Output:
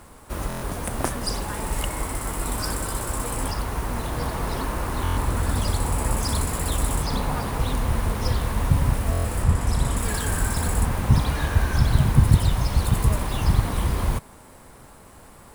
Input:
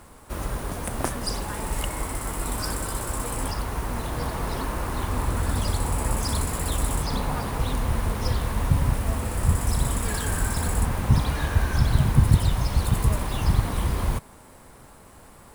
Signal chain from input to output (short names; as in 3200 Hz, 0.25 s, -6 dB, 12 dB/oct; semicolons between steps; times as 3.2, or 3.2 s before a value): 9.42–9.96 high shelf 6900 Hz -> 12000 Hz -10.5 dB; stuck buffer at 0.48/5.03/9.11, samples 1024, times 5; gain +1.5 dB